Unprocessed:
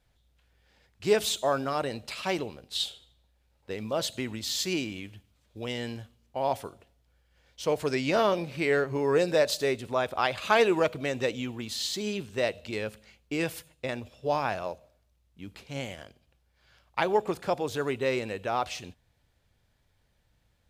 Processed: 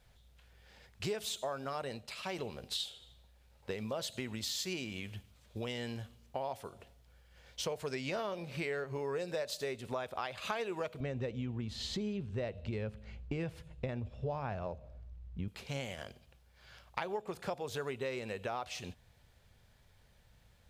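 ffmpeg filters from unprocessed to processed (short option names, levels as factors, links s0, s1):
-filter_complex "[0:a]asettb=1/sr,asplit=3[s0][s1][s2];[s0]atrim=end=11.004[s3];[s1]atrim=start=11:end=15.48,asetpts=PTS-STARTPTS,afade=t=in:d=0.004:c=qsin,afade=t=out:st=4.476:d=0.004:c=qsin,aemphasis=mode=reproduction:type=riaa[s4];[s2]atrim=start=15.476[s5];[s3][s4]acrossfade=d=0.004:c1=hsin:c2=qsin[s6];[s6][s5]acrossfade=d=0.004:c1=qsin:c2=hsin,asplit=3[s7][s8][s9];[s7]atrim=end=2.16,asetpts=PTS-STARTPTS,afade=t=out:st=1.92:d=0.24:c=qua:silence=0.266073[s10];[s8]atrim=start=2.16:end=2.22,asetpts=PTS-STARTPTS,volume=0.266[s11];[s9]atrim=start=2.22,asetpts=PTS-STARTPTS,afade=t=in:d=0.24:c=qua:silence=0.266073[s12];[s10][s11][s12]concat=n=3:v=0:a=1,equalizer=f=300:t=o:w=0.21:g=-10.5,acompressor=threshold=0.00794:ratio=5,volume=1.78"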